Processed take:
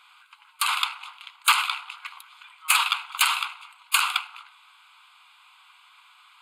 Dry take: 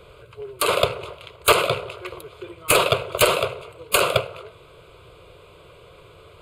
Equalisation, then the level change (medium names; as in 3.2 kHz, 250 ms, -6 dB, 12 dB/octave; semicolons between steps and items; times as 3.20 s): brick-wall FIR high-pass 750 Hz; peaking EQ 1 kHz -3 dB 0.77 oct; treble shelf 11 kHz -6 dB; 0.0 dB